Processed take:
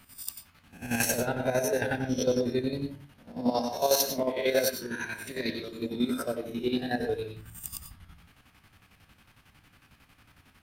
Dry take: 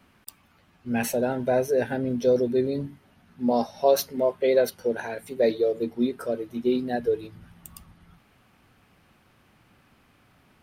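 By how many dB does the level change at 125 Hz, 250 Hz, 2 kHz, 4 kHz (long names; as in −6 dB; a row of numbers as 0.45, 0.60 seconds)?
−0.5, −3.5, +2.5, +4.5 decibels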